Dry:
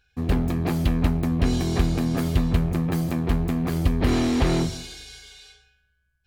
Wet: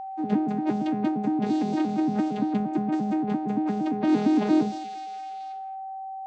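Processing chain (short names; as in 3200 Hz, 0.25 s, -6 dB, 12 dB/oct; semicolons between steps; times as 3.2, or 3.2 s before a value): arpeggiated vocoder bare fifth, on G#3, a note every 0.115 s; whine 770 Hz -33 dBFS; Nellymoser 88 kbps 44100 Hz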